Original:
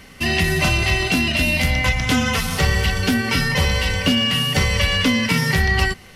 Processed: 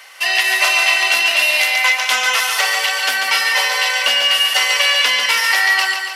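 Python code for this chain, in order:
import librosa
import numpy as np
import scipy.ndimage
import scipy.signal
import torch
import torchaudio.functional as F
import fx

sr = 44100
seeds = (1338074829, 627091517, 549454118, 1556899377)

y = scipy.signal.sosfilt(scipy.signal.butter(4, 690.0, 'highpass', fs=sr, output='sos'), x)
y = fx.echo_feedback(y, sr, ms=142, feedback_pct=56, wet_db=-5.5)
y = y * librosa.db_to_amplitude(5.5)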